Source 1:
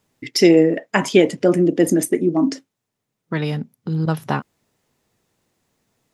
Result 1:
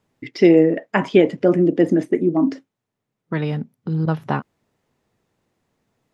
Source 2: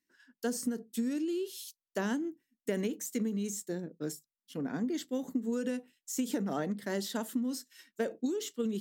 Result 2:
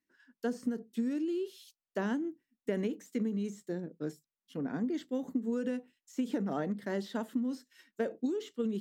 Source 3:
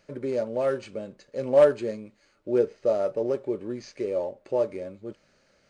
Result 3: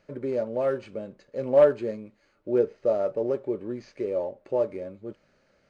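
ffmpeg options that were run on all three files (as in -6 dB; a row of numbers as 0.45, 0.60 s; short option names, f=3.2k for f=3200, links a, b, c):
-filter_complex "[0:a]acrossover=split=4500[a][b];[b]acompressor=threshold=-48dB:ratio=4:attack=1:release=60[c];[a][c]amix=inputs=2:normalize=0,highshelf=f=3.9k:g=-11"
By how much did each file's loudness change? -0.5, -0.5, 0.0 LU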